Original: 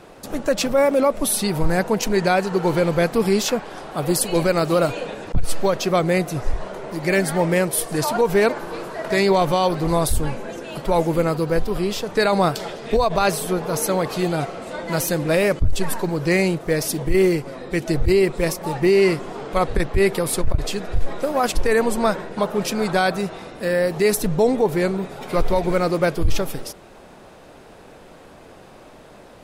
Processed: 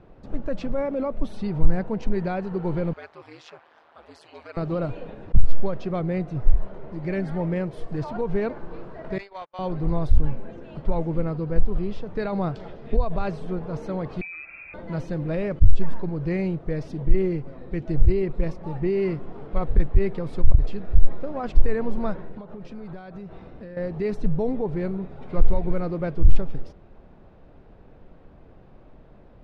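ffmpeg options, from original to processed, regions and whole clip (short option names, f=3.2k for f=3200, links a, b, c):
-filter_complex "[0:a]asettb=1/sr,asplit=3[a][b][c];[a]atrim=end=2.934[d];[b]atrim=start=2.93:end=4.57,asetpts=PTS-STARTPTS,afade=t=in:d=0.004:c=qsin,afade=t=out:st=1.636:d=0.004:c=qsin,highpass=1k,aeval=exprs='val(0)*sin(2*PI*79*n/s)':c=same[e];[c]atrim=start=4.566[f];[d][e]acrossfade=d=0.004:c1=hsin:c2=qsin[g];[g][f]acrossfade=d=0.004:c1=qsin:c2=hsin,asettb=1/sr,asplit=3[h][i][j];[h]atrim=end=9.184[k];[i]atrim=start=9.18:end=9.59,asetpts=PTS-STARTPTS,afade=t=in:d=0.004:c=qsin,afade=t=out:st=0.406:d=0.004:c=qsin,highpass=1k,agate=range=-41dB:threshold=-26dB:ratio=16:release=100:detection=peak,aeval=exprs='0.188*(abs(mod(val(0)/0.188+3,4)-2)-1)':c=same[l];[j]atrim=start=9.586[m];[k][l]acrossfade=d=0.004:c1=hsin:c2=qsin[n];[n][m]acrossfade=d=0.004:c1=qsin:c2=hsin,asettb=1/sr,asplit=3[o][p][q];[o]atrim=end=14.214[r];[p]atrim=start=14.21:end=14.74,asetpts=PTS-STARTPTS,afade=t=in:d=0.004:c=qsin,afade=t=out:st=0.526:d=0.004:c=qsin,lowshelf=f=410:t=q:w=3:g=9,acompressor=threshold=-21dB:ratio=3:attack=3.2:release=140:knee=1:detection=peak,lowpass=f=2.3k:t=q:w=0.5098,lowpass=f=2.3k:t=q:w=0.6013,lowpass=f=2.3k:t=q:w=0.9,lowpass=f=2.3k:t=q:w=2.563,afreqshift=-2700[s];[q]atrim=start=14.736[t];[r][s]acrossfade=d=0.004:c1=hsin:c2=qsin[u];[u][t]acrossfade=d=0.004:c1=qsin:c2=hsin,asettb=1/sr,asplit=3[v][w][x];[v]atrim=end=22.294[y];[w]atrim=start=22.29:end=23.77,asetpts=PTS-STARTPTS,afade=t=in:d=0.004:c=qsin,afade=t=out:st=1.476:d=0.004:c=qsin,lowpass=11k,acompressor=threshold=-28dB:ratio=6:attack=3.2:release=140:knee=1:detection=peak[z];[x]atrim=start=23.766[aa];[y][z]acrossfade=d=0.004:c1=hsin:c2=qsin[ab];[ab][aa]acrossfade=d=0.004:c1=qsin:c2=hsin,lowpass=4.7k,aemphasis=mode=reproduction:type=riaa,volume=-12.5dB"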